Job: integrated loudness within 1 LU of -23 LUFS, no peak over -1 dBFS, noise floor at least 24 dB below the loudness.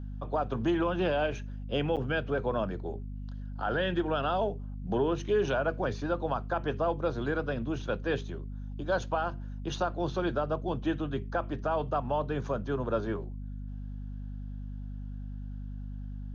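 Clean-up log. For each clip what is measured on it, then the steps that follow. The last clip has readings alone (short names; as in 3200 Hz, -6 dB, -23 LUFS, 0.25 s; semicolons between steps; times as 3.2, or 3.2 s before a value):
dropouts 1; longest dropout 7.8 ms; hum 50 Hz; harmonics up to 250 Hz; hum level -36 dBFS; loudness -32.5 LUFS; peak -18.0 dBFS; loudness target -23.0 LUFS
-> interpolate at 1.96, 7.8 ms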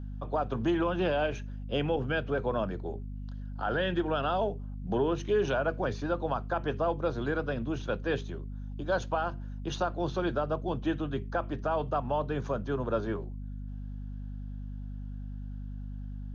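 dropouts 0; hum 50 Hz; harmonics up to 250 Hz; hum level -36 dBFS
-> notches 50/100/150/200/250 Hz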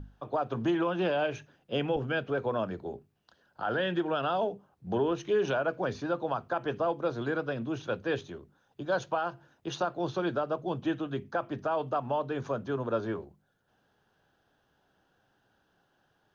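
hum none; loudness -32.0 LUFS; peak -19.0 dBFS; loudness target -23.0 LUFS
-> gain +9 dB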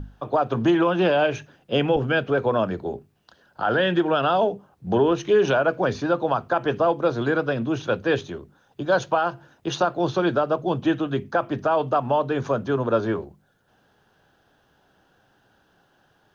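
loudness -23.0 LUFS; peak -10.0 dBFS; noise floor -64 dBFS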